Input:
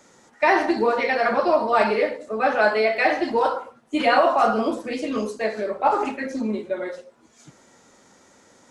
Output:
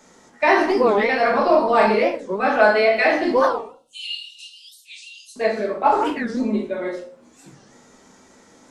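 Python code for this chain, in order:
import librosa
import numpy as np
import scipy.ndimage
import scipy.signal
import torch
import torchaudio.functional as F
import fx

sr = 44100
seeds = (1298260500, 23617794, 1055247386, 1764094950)

y = fx.cheby_ripple_highpass(x, sr, hz=2700.0, ripple_db=3, at=(3.62, 5.36))
y = y + 10.0 ** (-17.5 / 20.0) * np.pad(y, (int(86 * sr / 1000.0), 0))[:len(y)]
y = fx.room_shoebox(y, sr, seeds[0], volume_m3=210.0, walls='furnished', distance_m=1.5)
y = fx.record_warp(y, sr, rpm=45.0, depth_cents=250.0)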